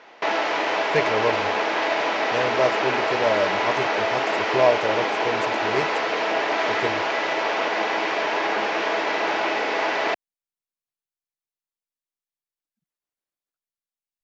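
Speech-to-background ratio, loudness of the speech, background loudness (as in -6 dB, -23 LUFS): -3.5 dB, -26.5 LUFS, -23.0 LUFS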